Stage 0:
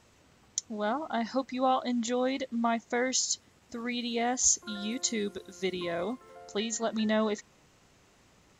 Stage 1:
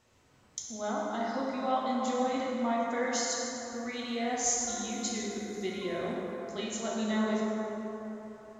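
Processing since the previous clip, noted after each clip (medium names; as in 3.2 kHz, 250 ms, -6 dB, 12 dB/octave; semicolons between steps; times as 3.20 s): plate-style reverb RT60 4 s, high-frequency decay 0.4×, DRR -5 dB; trim -7.5 dB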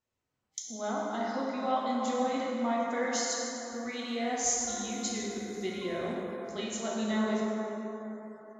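spectral noise reduction 21 dB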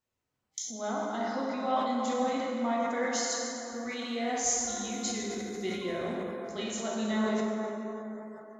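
decay stretcher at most 42 dB/s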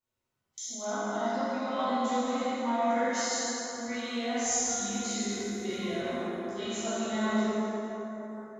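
plate-style reverb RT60 1.4 s, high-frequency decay 1×, DRR -8.5 dB; trim -8 dB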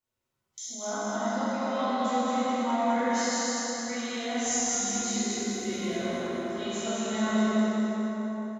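feedback delay 208 ms, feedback 53%, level -3.5 dB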